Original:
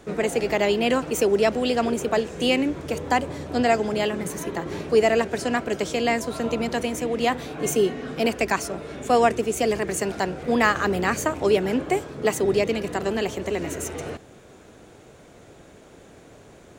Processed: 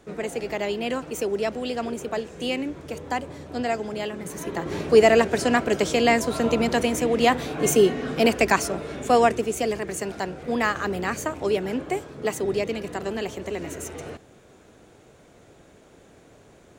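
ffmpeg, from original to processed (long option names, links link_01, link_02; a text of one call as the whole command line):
ffmpeg -i in.wav -af "volume=3.5dB,afade=type=in:start_time=4.21:duration=0.75:silence=0.334965,afade=type=out:start_time=8.56:duration=1.24:silence=0.421697" out.wav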